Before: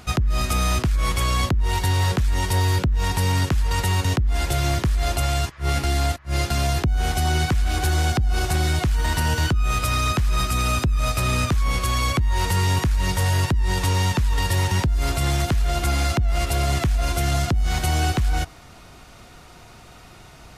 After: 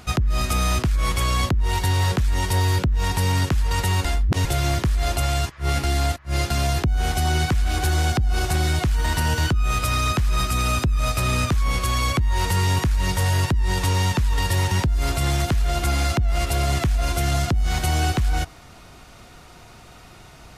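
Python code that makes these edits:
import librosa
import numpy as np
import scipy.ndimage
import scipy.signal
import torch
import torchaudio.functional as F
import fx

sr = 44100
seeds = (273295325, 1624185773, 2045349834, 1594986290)

y = fx.edit(x, sr, fx.reverse_span(start_s=4.05, length_s=0.4), tone=tone)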